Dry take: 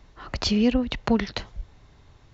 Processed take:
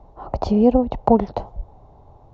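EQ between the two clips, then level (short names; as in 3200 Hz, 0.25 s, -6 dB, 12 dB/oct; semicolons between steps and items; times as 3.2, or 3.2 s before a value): EQ curve 300 Hz 0 dB, 810 Hz +11 dB, 1700 Hz -19 dB; +4.5 dB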